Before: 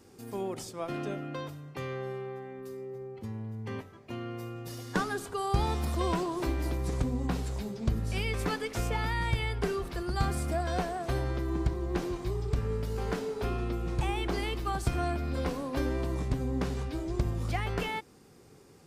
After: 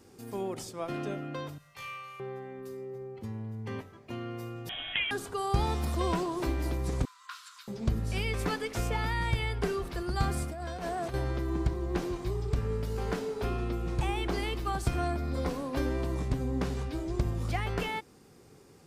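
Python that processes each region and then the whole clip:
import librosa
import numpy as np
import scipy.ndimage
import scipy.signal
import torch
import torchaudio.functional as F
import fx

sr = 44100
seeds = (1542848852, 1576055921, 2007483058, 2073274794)

y = fx.chain(x, sr, fx.tone_stack(knobs='10-0-10'),
    fx.room_flutter(wall_m=3.2, rt60_s=0.61), at=(1.58, 2.2))
y = fx.chain(y, sr, fx.highpass(hz=390.0, slope=12),
    fx.freq_invert(carrier_hz=3600),
    fx.env_flatten(amount_pct=50), at=(4.69, 5.11))
y = fx.chain(y, sr, fx.cheby_ripple_highpass(hz=1000.0, ripple_db=6),
    fx.peak_eq(hz=1300.0, db=5.0, octaves=0.38), at=(7.05, 7.68))
y = fx.chain(y, sr, fx.highpass(hz=45.0, slope=12),
    fx.over_compress(threshold_db=-36.0, ratio=-1.0), at=(10.43, 11.14))
y = fx.chain(y, sr, fx.peak_eq(hz=2800.0, db=-7.5, octaves=0.38),
    fx.notch(hz=1600.0, q=14.0), at=(15.07, 15.5))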